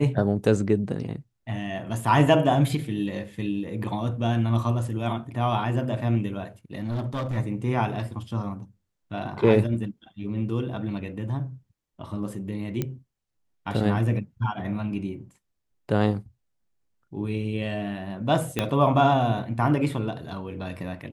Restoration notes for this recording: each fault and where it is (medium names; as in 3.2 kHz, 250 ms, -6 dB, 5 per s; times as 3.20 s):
6.78–7.38 s: clipped -25 dBFS
12.82 s: pop -14 dBFS
18.59 s: pop -9 dBFS